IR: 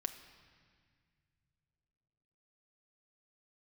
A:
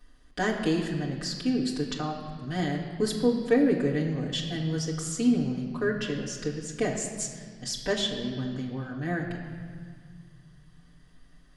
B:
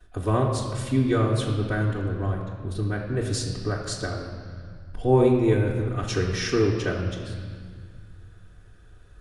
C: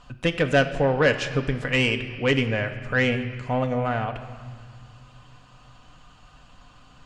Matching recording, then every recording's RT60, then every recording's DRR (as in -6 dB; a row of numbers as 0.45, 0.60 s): C; 1.8, 1.8, 1.9 s; -5.0, -12.0, 5.0 dB